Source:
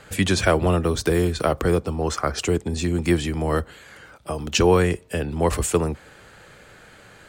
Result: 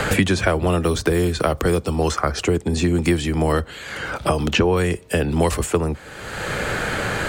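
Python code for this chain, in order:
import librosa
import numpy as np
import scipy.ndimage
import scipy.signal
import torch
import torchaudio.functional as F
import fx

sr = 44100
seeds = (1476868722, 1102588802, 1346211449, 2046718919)

y = fx.high_shelf(x, sr, hz=5000.0, db=-11.0, at=(3.52, 4.77))
y = fx.band_squash(y, sr, depth_pct=100)
y = F.gain(torch.from_numpy(y), 1.5).numpy()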